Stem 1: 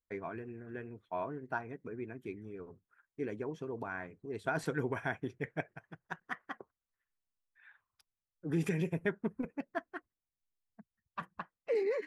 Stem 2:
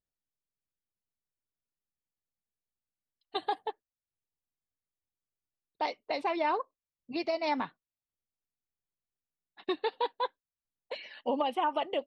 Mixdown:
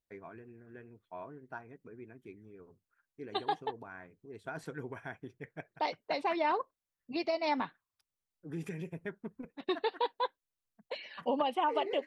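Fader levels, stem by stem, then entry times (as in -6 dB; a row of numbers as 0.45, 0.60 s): -7.5, -1.0 dB; 0.00, 0.00 s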